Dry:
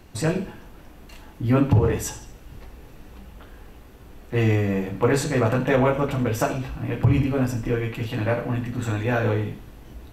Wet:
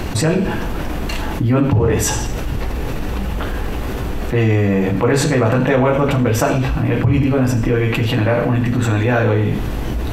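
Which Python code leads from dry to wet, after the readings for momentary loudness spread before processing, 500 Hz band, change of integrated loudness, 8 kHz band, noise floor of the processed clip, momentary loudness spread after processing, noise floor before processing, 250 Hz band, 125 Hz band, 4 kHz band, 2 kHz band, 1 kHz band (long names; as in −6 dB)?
10 LU, +7.0 dB, +6.0 dB, +10.0 dB, −23 dBFS, 9 LU, −46 dBFS, +7.5 dB, +7.0 dB, +10.5 dB, +8.0 dB, +7.0 dB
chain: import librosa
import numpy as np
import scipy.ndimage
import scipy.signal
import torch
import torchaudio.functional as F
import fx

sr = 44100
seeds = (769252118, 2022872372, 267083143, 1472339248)

y = fx.high_shelf(x, sr, hz=6300.0, db=-5.5)
y = fx.env_flatten(y, sr, amount_pct=70)
y = y * librosa.db_to_amplitude(1.5)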